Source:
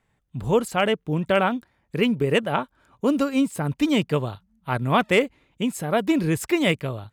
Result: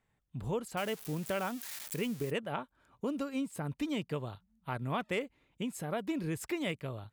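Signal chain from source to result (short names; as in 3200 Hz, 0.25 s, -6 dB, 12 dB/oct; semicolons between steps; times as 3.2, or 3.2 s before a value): 0.77–2.31 switching spikes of -21 dBFS; compressor 2:1, threshold -28 dBFS, peak gain reduction 8 dB; gain -8 dB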